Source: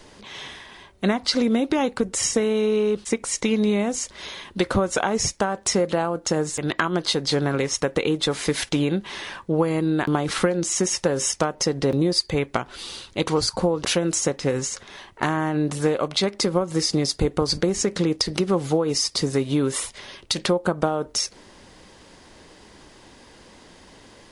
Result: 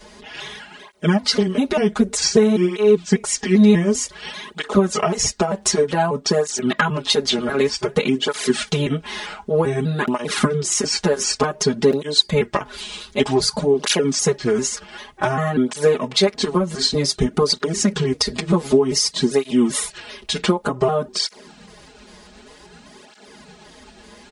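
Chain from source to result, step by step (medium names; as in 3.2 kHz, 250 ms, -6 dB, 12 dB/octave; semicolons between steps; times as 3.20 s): pitch shift switched off and on -3 st, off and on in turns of 197 ms; comb 4.8 ms, depth 97%; cancelling through-zero flanger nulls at 0.54 Hz, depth 7.9 ms; trim +4.5 dB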